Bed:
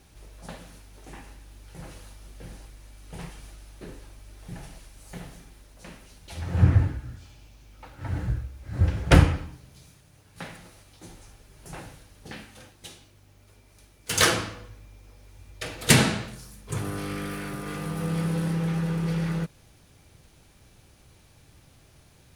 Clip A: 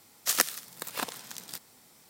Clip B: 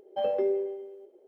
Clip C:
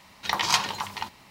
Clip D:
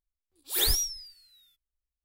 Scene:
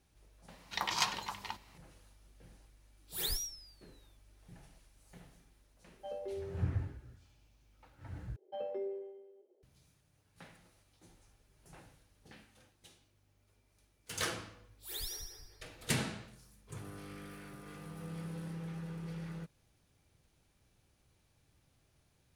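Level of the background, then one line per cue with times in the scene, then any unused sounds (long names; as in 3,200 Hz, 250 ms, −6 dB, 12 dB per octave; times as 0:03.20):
bed −16 dB
0:00.48: mix in C −9.5 dB
0:02.62: mix in D −11 dB
0:05.87: mix in B −15 dB
0:08.36: overwrite with B −12.5 dB
0:14.33: mix in D −17.5 dB + echo with a time of its own for lows and highs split 2,200 Hz, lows 195 ms, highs 81 ms, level −4 dB
not used: A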